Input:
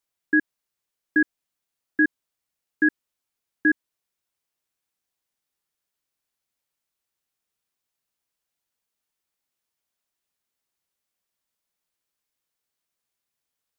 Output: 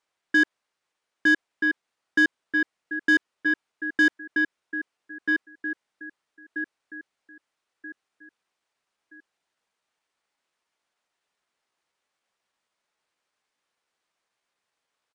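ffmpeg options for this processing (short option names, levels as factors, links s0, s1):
-filter_complex "[0:a]asplit=2[s0][s1];[s1]aecho=0:1:1165|2330|3495|4660:0.355|0.114|0.0363|0.0116[s2];[s0][s2]amix=inputs=2:normalize=0,asplit=2[s3][s4];[s4]highpass=f=720:p=1,volume=7.94,asoftclip=type=tanh:threshold=0.316[s5];[s3][s5]amix=inputs=2:normalize=0,lowpass=f=1500:p=1,volume=0.501,aresample=22050,aresample=44100,atempo=0.91"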